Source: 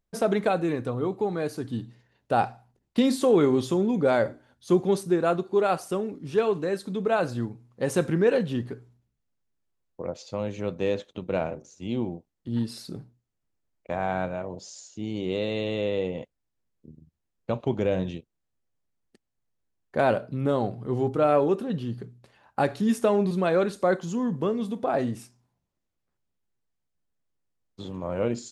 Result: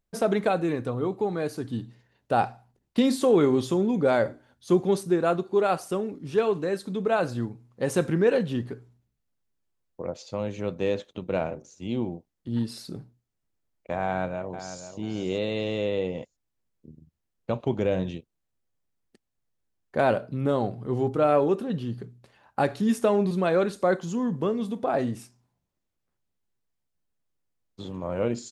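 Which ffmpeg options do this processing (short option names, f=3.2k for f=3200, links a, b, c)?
-filter_complex "[0:a]asplit=2[a][b];[b]afade=t=in:st=14.04:d=0.01,afade=t=out:st=14.89:d=0.01,aecho=0:1:490|980|1470:0.281838|0.0845515|0.0253654[c];[a][c]amix=inputs=2:normalize=0"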